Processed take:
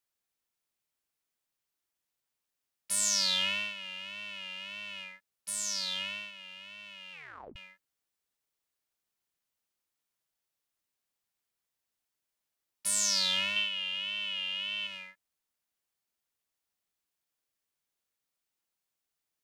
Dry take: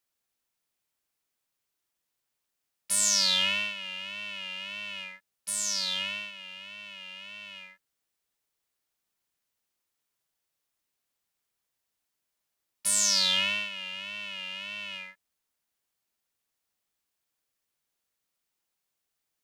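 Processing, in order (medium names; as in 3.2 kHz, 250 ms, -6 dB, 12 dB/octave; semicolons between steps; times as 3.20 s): 7.12 s: tape stop 0.44 s; 13.56–14.87 s: peaking EQ 3.1 kHz +11.5 dB 0.38 oct; trim -4 dB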